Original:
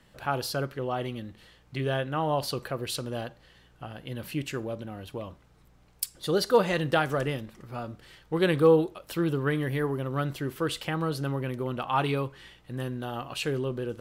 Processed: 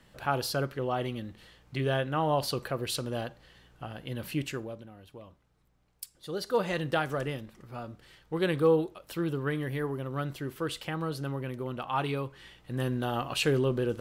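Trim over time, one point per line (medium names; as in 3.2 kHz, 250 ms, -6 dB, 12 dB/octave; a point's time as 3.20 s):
4.44 s 0 dB
4.93 s -11 dB
6.26 s -11 dB
6.70 s -4 dB
12.23 s -4 dB
12.93 s +3.5 dB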